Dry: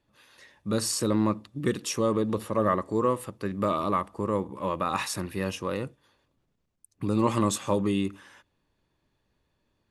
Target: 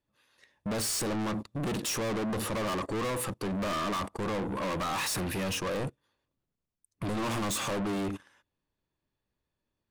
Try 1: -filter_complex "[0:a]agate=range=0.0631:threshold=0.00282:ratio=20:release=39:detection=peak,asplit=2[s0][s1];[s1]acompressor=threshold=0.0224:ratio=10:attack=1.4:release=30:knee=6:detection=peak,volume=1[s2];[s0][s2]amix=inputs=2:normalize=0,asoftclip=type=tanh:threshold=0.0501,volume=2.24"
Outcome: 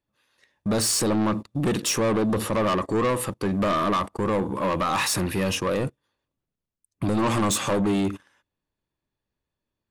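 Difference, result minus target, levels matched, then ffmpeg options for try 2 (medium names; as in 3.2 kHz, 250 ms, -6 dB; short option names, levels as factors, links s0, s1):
saturation: distortion -5 dB
-filter_complex "[0:a]agate=range=0.0631:threshold=0.00282:ratio=20:release=39:detection=peak,asplit=2[s0][s1];[s1]acompressor=threshold=0.0224:ratio=10:attack=1.4:release=30:knee=6:detection=peak,volume=1[s2];[s0][s2]amix=inputs=2:normalize=0,asoftclip=type=tanh:threshold=0.0141,volume=2.24"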